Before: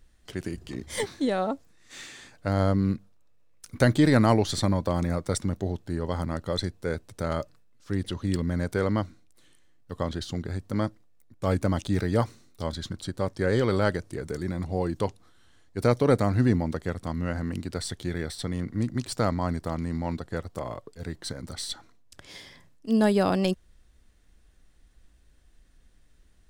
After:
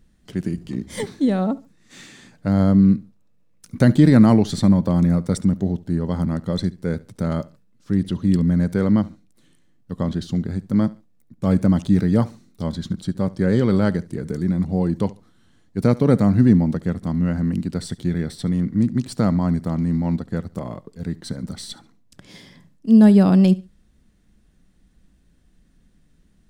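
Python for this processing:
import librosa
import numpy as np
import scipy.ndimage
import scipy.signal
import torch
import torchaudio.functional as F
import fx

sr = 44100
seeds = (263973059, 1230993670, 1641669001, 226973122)

p1 = fx.peak_eq(x, sr, hz=190.0, db=14.5, octaves=1.3)
p2 = p1 + fx.echo_feedback(p1, sr, ms=70, feedback_pct=26, wet_db=-20.5, dry=0)
y = F.gain(torch.from_numpy(p2), -1.0).numpy()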